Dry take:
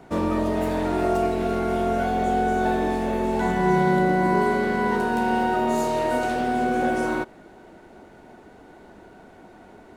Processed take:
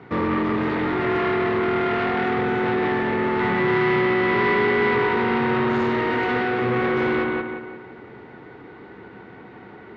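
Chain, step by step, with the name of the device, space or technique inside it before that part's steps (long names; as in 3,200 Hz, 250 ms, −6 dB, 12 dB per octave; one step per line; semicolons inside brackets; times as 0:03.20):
analogue delay pedal into a guitar amplifier (bucket-brigade delay 176 ms, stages 4,096, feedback 43%, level −3 dB; tube saturation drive 24 dB, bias 0.55; loudspeaker in its box 87–4,000 Hz, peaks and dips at 120 Hz +10 dB, 440 Hz +5 dB, 640 Hz −10 dB, 1,200 Hz +5 dB, 2,000 Hz +8 dB)
level +5 dB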